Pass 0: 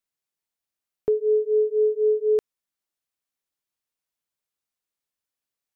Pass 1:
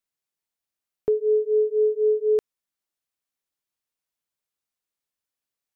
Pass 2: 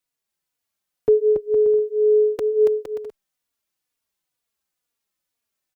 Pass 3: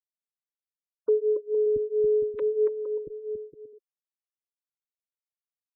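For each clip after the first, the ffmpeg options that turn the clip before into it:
-af anull
-filter_complex "[0:a]aecho=1:1:280|462|580.3|657.2|707.2:0.631|0.398|0.251|0.158|0.1,asplit=2[s0][s1];[s1]adelay=3.5,afreqshift=-2.1[s2];[s0][s2]amix=inputs=2:normalize=1,volume=2.24"
-filter_complex "[0:a]asuperstop=centerf=720:order=20:qfactor=2.4,acrossover=split=320[s0][s1];[s0]adelay=680[s2];[s2][s1]amix=inputs=2:normalize=0,afftfilt=real='re*gte(hypot(re,im),0.0141)':imag='im*gte(hypot(re,im),0.0141)':win_size=1024:overlap=0.75,volume=0.596"

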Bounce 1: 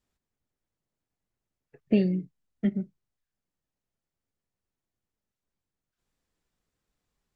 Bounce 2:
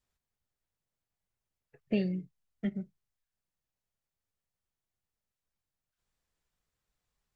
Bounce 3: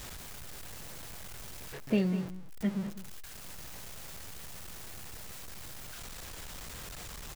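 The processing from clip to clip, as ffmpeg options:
-af "equalizer=f=280:t=o:w=1.4:g=-7.5,volume=0.794"
-af "aeval=exprs='val(0)+0.5*0.0126*sgn(val(0))':c=same,aecho=1:1:201:0.224,volume=1.12"

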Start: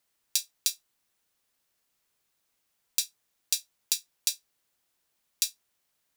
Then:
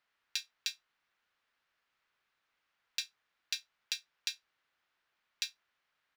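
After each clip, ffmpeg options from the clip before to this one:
-af "firequalizer=gain_entry='entry(210,0);entry(1400,13);entry(8600,-15)':delay=0.05:min_phase=1,volume=0.447"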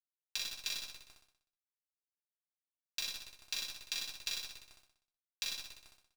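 -filter_complex "[0:a]asplit=2[s0][s1];[s1]aecho=0:1:40|96|174.4|284.2|437.8:0.631|0.398|0.251|0.158|0.1[s2];[s0][s2]amix=inputs=2:normalize=0,acrusher=bits=7:dc=4:mix=0:aa=0.000001,asplit=2[s3][s4];[s4]aecho=0:1:62|124|186|248|310|372|434:0.631|0.328|0.171|0.0887|0.0461|0.024|0.0125[s5];[s3][s5]amix=inputs=2:normalize=0,volume=0.668"

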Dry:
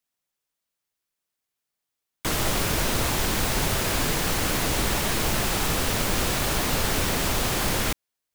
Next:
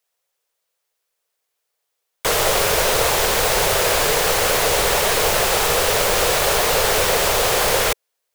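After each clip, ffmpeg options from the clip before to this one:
-af "lowshelf=f=360:t=q:w=3:g=-8.5,volume=2.37"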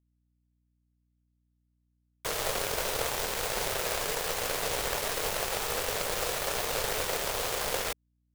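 -af "aeval=exprs='val(0)+0.00447*(sin(2*PI*60*n/s)+sin(2*PI*2*60*n/s)/2+sin(2*PI*3*60*n/s)/3+sin(2*PI*4*60*n/s)/4+sin(2*PI*5*60*n/s)/5)':c=same,aeval=exprs='0.668*(cos(1*acos(clip(val(0)/0.668,-1,1)))-cos(1*PI/2))+0.0944*(cos(3*acos(clip(val(0)/0.668,-1,1)))-cos(3*PI/2))+0.0422*(cos(7*acos(clip(val(0)/0.668,-1,1)))-cos(7*PI/2))':c=same,volume=0.398"

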